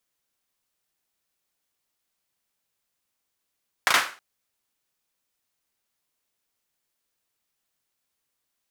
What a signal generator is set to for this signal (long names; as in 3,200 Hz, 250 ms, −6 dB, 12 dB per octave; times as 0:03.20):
synth clap length 0.32 s, bursts 3, apart 35 ms, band 1,400 Hz, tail 0.36 s